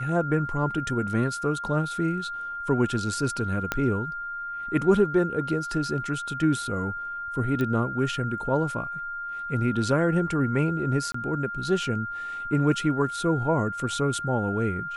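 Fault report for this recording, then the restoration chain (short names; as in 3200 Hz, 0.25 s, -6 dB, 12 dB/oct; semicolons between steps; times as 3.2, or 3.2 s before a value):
tone 1400 Hz -31 dBFS
3.72 pop -10 dBFS
7.61 pop -17 dBFS
11.12–11.14 gap 24 ms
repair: de-click; notch 1400 Hz, Q 30; interpolate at 11.12, 24 ms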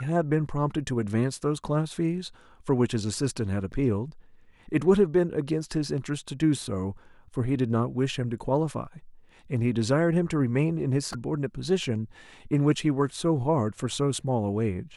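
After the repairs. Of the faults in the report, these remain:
3.72 pop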